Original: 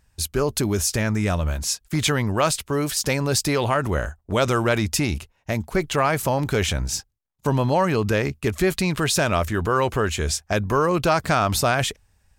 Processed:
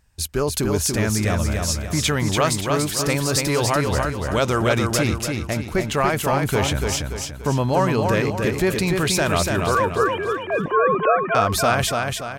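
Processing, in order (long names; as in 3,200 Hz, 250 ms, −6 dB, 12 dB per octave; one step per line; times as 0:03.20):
0:09.75–0:11.35: three sine waves on the formant tracks
repeating echo 289 ms, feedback 43%, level −4 dB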